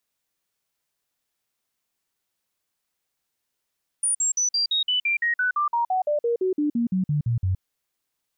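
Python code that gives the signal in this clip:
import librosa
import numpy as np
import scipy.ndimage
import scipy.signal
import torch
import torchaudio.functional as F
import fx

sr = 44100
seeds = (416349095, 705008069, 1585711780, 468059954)

y = fx.stepped_sweep(sr, from_hz=9480.0, direction='down', per_octave=3, tones=21, dwell_s=0.12, gap_s=0.05, level_db=-19.5)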